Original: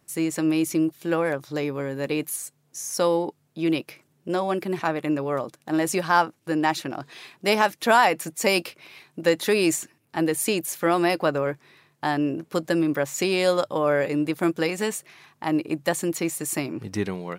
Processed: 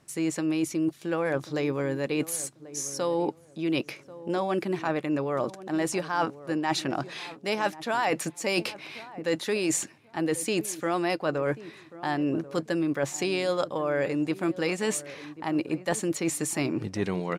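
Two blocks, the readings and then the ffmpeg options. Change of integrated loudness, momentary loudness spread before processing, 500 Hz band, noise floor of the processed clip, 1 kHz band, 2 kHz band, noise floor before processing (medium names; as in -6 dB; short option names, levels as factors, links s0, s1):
-4.5 dB, 9 LU, -4.0 dB, -54 dBFS, -6.5 dB, -5.5 dB, -67 dBFS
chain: -filter_complex "[0:a]lowpass=8700,areverse,acompressor=threshold=0.0355:ratio=6,areverse,asplit=2[s0][s1];[s1]adelay=1088,lowpass=f=830:p=1,volume=0.178,asplit=2[s2][s3];[s3]adelay=1088,lowpass=f=830:p=1,volume=0.26,asplit=2[s4][s5];[s5]adelay=1088,lowpass=f=830:p=1,volume=0.26[s6];[s0][s2][s4][s6]amix=inputs=4:normalize=0,volume=1.68"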